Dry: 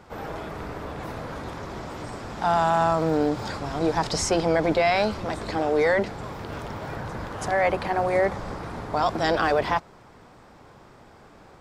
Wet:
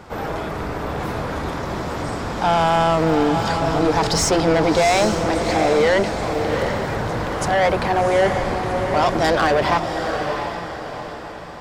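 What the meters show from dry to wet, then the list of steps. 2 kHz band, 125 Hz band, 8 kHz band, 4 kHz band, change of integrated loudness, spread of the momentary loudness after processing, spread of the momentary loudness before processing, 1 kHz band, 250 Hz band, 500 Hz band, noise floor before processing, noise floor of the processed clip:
+6.0 dB, +7.5 dB, +8.0 dB, +8.5 dB, +6.0 dB, 10 LU, 14 LU, +6.0 dB, +7.0 dB, +6.0 dB, −51 dBFS, −32 dBFS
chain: soft clipping −21 dBFS, distortion −11 dB
on a send: feedback delay with all-pass diffusion 736 ms, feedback 42%, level −6 dB
on the sum: level +8.5 dB

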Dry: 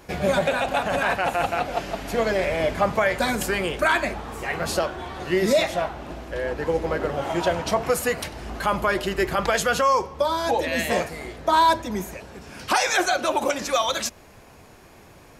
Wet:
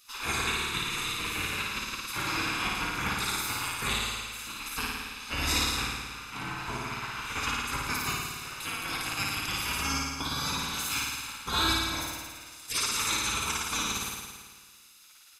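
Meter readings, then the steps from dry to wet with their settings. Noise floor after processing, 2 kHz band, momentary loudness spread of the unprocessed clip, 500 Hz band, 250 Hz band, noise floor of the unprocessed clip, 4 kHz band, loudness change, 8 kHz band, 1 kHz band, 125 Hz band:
−54 dBFS, −5.5 dB, 10 LU, −22.0 dB, −10.0 dB, −49 dBFS, +0.5 dB, −6.5 dB, +0.5 dB, −11.0 dB, −5.0 dB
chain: gate on every frequency bin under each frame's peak −20 dB weak
comb filter 0.8 ms, depth 57%
flutter between parallel walls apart 9.5 metres, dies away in 1.5 s

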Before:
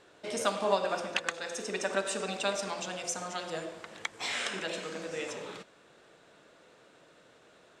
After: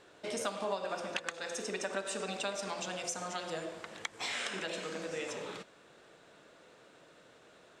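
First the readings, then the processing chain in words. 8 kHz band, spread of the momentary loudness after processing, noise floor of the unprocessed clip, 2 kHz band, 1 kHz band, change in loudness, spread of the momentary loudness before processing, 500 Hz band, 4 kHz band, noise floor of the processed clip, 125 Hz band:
−3.0 dB, 6 LU, −60 dBFS, −4.0 dB, −5.0 dB, −4.0 dB, 10 LU, −4.5 dB, −3.5 dB, −60 dBFS, −3.0 dB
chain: downward compressor 2.5 to 1, threshold −35 dBFS, peak gain reduction 9.5 dB

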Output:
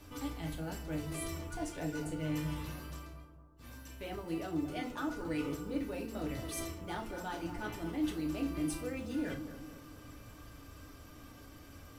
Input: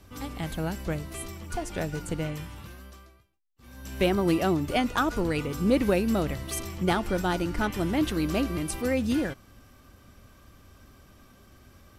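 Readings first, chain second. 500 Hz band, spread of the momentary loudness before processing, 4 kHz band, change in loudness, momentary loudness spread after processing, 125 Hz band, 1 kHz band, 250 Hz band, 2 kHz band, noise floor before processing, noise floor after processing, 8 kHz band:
−13.0 dB, 14 LU, −11.0 dB, −11.0 dB, 17 LU, −9.5 dB, −12.0 dB, −9.5 dB, −11.0 dB, −56 dBFS, −54 dBFS, −7.5 dB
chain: mains-hum notches 50/100/150/200/250 Hz
reversed playback
downward compressor 6 to 1, threshold −38 dBFS, peak gain reduction 18.5 dB
reversed playback
floating-point word with a short mantissa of 4 bits
soft clipping −30.5 dBFS, distortion −22 dB
on a send: bucket-brigade delay 228 ms, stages 2,048, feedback 51%, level −10 dB
on the sum: feedback delay network reverb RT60 0.34 s, low-frequency decay 0.95×, high-frequency decay 0.95×, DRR 0 dB
level −1.5 dB

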